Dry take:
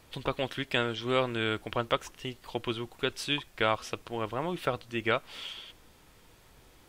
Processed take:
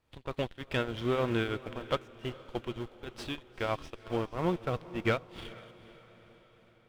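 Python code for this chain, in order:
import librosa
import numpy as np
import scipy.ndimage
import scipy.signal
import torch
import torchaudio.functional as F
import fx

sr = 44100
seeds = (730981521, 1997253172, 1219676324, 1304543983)

p1 = fx.tremolo_shape(x, sr, shape='triangle', hz=3.2, depth_pct=80)
p2 = fx.leveller(p1, sr, passes=2)
p3 = fx.hpss(p2, sr, part='percussive', gain_db=-7)
p4 = fx.schmitt(p3, sr, flips_db=-33.5)
p5 = p3 + F.gain(torch.from_numpy(p4), -5.5).numpy()
p6 = fx.high_shelf(p5, sr, hz=5200.0, db=-10.0)
p7 = p6 + fx.echo_diffused(p6, sr, ms=459, feedback_pct=57, wet_db=-12.0, dry=0)
y = fx.upward_expand(p7, sr, threshold_db=-42.0, expansion=1.5)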